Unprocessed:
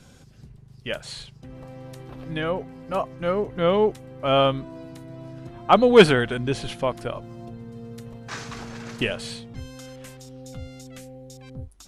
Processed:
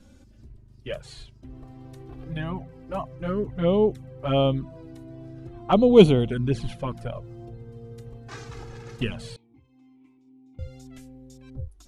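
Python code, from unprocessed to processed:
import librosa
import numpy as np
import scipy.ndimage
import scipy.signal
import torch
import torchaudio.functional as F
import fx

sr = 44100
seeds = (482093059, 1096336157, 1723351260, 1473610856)

y = fx.low_shelf(x, sr, hz=460.0, db=10.5)
y = fx.env_flanger(y, sr, rest_ms=3.8, full_db=-10.5)
y = fx.vowel_filter(y, sr, vowel='u', at=(9.36, 10.59))
y = F.gain(torch.from_numpy(y), -5.5).numpy()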